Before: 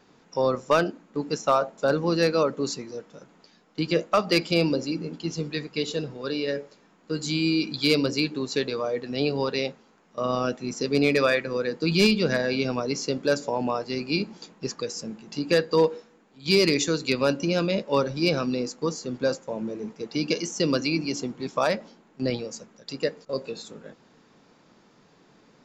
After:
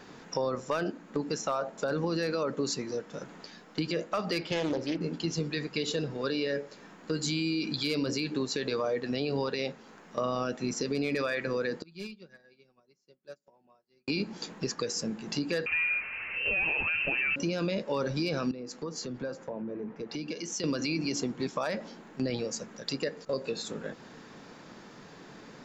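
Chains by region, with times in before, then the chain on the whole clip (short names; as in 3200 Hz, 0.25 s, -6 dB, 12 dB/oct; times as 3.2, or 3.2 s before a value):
4.41–5.01 LPF 3300 Hz + bell 210 Hz -8 dB 0.79 oct + Doppler distortion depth 0.37 ms
11.81–14.08 comb 5.4 ms, depth 54% + flipped gate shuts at -27 dBFS, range -24 dB + upward expander 2.5:1, over -57 dBFS
15.66–17.36 bell 680 Hz +7 dB 0.57 oct + power-law curve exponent 0.7 + inverted band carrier 2900 Hz
18.51–20.64 air absorption 66 m + compressor 4:1, threshold -40 dBFS + three-band expander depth 100%
whole clip: bell 1700 Hz +4 dB 0.38 oct; limiter -20 dBFS; compressor 2:1, threshold -43 dBFS; gain +8 dB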